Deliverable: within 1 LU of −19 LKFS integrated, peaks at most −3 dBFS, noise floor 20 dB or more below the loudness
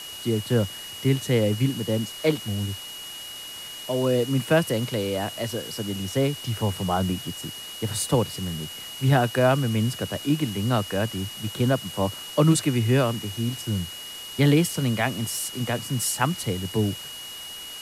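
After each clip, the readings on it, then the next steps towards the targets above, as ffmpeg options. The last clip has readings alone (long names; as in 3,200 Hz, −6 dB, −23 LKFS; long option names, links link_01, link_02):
interfering tone 2,900 Hz; level of the tone −37 dBFS; background noise floor −38 dBFS; target noise floor −46 dBFS; integrated loudness −25.5 LKFS; sample peak −6.5 dBFS; target loudness −19.0 LKFS
→ -af "bandreject=frequency=2900:width=30"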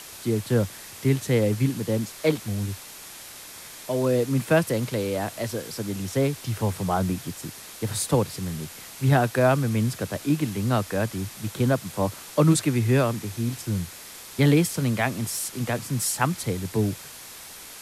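interfering tone none found; background noise floor −42 dBFS; target noise floor −45 dBFS
→ -af "afftdn=noise_reduction=6:noise_floor=-42"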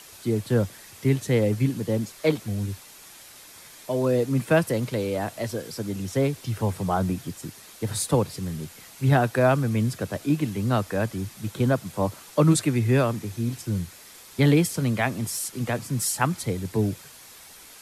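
background noise floor −47 dBFS; integrated loudness −25.5 LKFS; sample peak −7.0 dBFS; target loudness −19.0 LKFS
→ -af "volume=6.5dB,alimiter=limit=-3dB:level=0:latency=1"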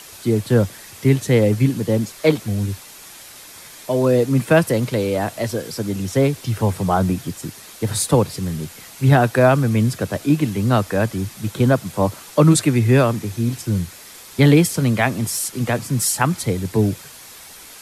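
integrated loudness −19.0 LKFS; sample peak −3.0 dBFS; background noise floor −41 dBFS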